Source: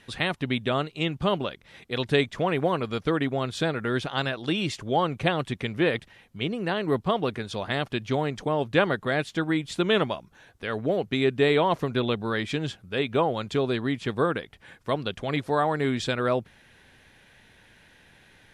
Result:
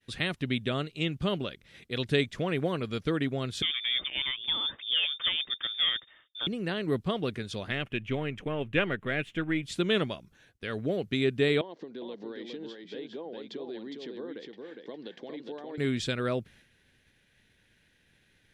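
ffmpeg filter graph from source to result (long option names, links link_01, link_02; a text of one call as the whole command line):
ffmpeg -i in.wav -filter_complex "[0:a]asettb=1/sr,asplit=3[link_01][link_02][link_03];[link_01]atrim=end=3.624[link_04];[link_02]atrim=start=3.62:end=6.47,asetpts=PTS-STARTPTS,afade=type=in:duration=0.004:curve=qsin,afade=type=out:start_time=2.846:duration=0.004:curve=qsin,volume=19.5dB,asoftclip=hard,volume=-19.5dB,lowpass=frequency=3100:width_type=q:width=0.5098,lowpass=frequency=3100:width_type=q:width=0.6013,lowpass=frequency=3100:width_type=q:width=0.9,lowpass=frequency=3100:width_type=q:width=2.563,afreqshift=-3700[link_05];[link_03]atrim=start=6.466[link_06];[link_04][link_05]acrossfade=duration=0.004:curve1=hsin:curve2=qsin[link_07];[link_07][link_06]acrossfade=duration=0.004:curve1=qsin:curve2=hsin,asettb=1/sr,asplit=3[link_08][link_09][link_10];[link_08]atrim=end=7.714[link_11];[link_09]atrim=start=7.71:end=9.63,asetpts=PTS-STARTPTS,afade=type=in:duration=0.004:curve=qsin,afade=type=out:start_time=1.916:duration=0.004:curve=qsin,aeval=exprs='if(lt(val(0),0),0.708*val(0),val(0))':channel_layout=same,highshelf=frequency=3500:width_type=q:width=3:gain=-8.5[link_12];[link_10]atrim=start=9.626[link_13];[link_11][link_12]acrossfade=duration=0.004:curve1=hsin:curve2=qsin[link_14];[link_14][link_13]acrossfade=duration=0.004:curve1=qsin:curve2=hsin,asettb=1/sr,asplit=3[link_15][link_16][link_17];[link_15]atrim=end=11.614[link_18];[link_16]atrim=start=11.61:end=15.78,asetpts=PTS-STARTPTS,afade=type=in:duration=0.004:curve=qsin,afade=type=out:start_time=4.166:duration=0.004:curve=qsin,acompressor=threshold=-35dB:ratio=6:attack=3.2:release=140:knee=1:detection=peak,highpass=frequency=220:width=0.5412,highpass=frequency=220:width=1.3066,equalizer=frequency=330:width_type=q:width=4:gain=6,equalizer=frequency=480:width_type=q:width=4:gain=6,equalizer=frequency=850:width_type=q:width=4:gain=6,equalizer=frequency=1300:width_type=q:width=4:gain=-9,equalizer=frequency=2500:width_type=q:width=4:gain=-9,lowpass=frequency=5000:width=0.5412,lowpass=frequency=5000:width=1.3066,aecho=1:1:409:0.596,atrim=end_sample=183897[link_19];[link_17]atrim=start=15.776[link_20];[link_18][link_19]acrossfade=duration=0.004:curve1=hsin:curve2=qsin[link_21];[link_21][link_20]acrossfade=duration=0.004:curve1=qsin:curve2=hsin,agate=range=-33dB:threshold=-49dB:ratio=3:detection=peak,equalizer=frequency=880:width=1.2:gain=-10,volume=-2dB" out.wav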